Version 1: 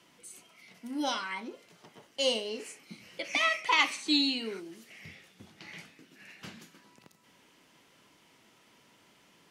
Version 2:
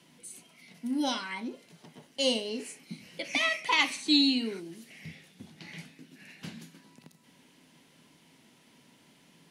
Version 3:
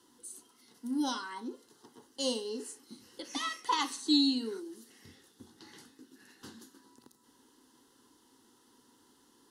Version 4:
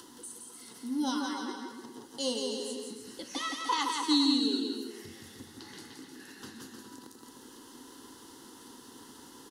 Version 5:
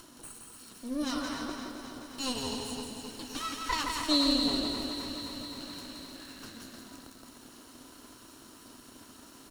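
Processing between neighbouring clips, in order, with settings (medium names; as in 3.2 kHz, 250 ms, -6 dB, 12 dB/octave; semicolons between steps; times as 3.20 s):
graphic EQ with 31 bands 160 Hz +10 dB, 250 Hz +9 dB, 1.25 kHz -6 dB, 4 kHz +3 dB, 10 kHz +6 dB
static phaser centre 630 Hz, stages 6
upward compressor, threshold -41 dBFS; on a send: bouncing-ball echo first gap 170 ms, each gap 0.8×, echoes 5
comb filter that takes the minimum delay 0.72 ms; bit-crushed delay 261 ms, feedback 80%, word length 9-bit, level -10 dB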